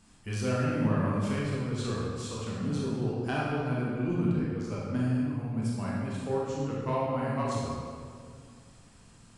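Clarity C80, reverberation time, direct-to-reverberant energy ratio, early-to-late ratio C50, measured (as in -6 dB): 0.0 dB, 2.1 s, -5.5 dB, -2.0 dB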